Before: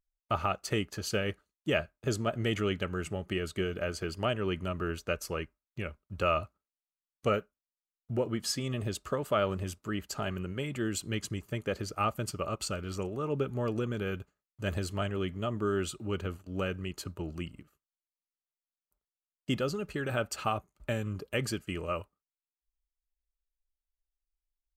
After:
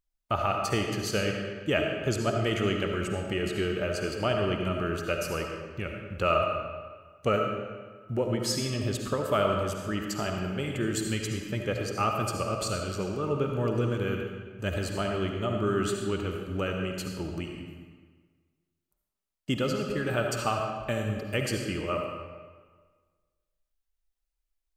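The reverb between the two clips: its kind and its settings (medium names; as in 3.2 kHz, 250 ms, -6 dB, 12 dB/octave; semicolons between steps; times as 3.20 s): algorithmic reverb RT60 1.5 s, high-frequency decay 0.8×, pre-delay 30 ms, DRR 2 dB; trim +2 dB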